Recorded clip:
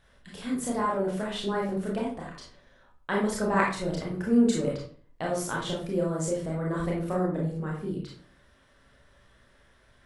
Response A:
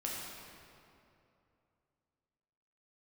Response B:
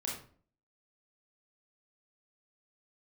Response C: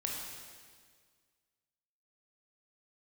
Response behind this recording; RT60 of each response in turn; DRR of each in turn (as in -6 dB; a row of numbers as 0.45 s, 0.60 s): B; 2.7 s, 0.45 s, 1.8 s; -4.5 dB, -3.5 dB, -2.0 dB